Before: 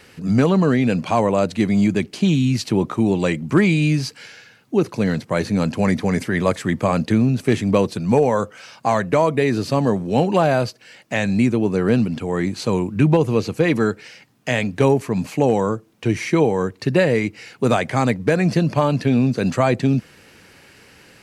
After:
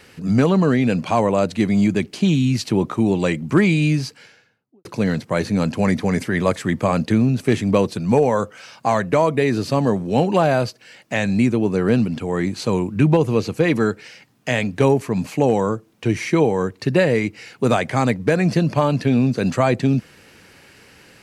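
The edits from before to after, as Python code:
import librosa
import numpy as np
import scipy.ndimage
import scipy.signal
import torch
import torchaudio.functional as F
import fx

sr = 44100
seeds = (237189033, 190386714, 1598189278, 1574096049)

y = fx.studio_fade_out(x, sr, start_s=3.86, length_s=0.99)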